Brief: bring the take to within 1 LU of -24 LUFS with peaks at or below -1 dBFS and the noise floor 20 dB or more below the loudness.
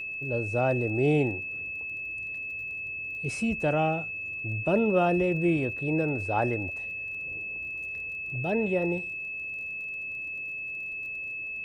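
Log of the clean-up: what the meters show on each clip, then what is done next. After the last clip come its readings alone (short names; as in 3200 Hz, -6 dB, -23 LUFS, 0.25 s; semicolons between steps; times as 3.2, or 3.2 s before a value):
ticks 27/s; steady tone 2600 Hz; tone level -33 dBFS; loudness -29.0 LUFS; peak -12.0 dBFS; loudness target -24.0 LUFS
-> de-click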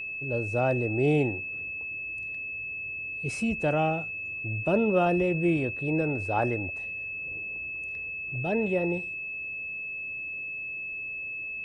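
ticks 0/s; steady tone 2600 Hz; tone level -33 dBFS
-> notch 2600 Hz, Q 30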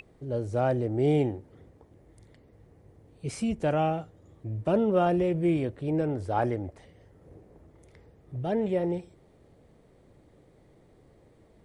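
steady tone none; loudness -28.0 LUFS; peak -12.5 dBFS; loudness target -24.0 LUFS
-> gain +4 dB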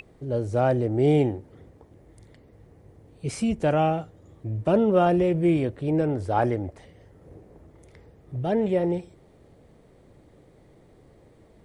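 loudness -24.0 LUFS; peak -8.5 dBFS; noise floor -56 dBFS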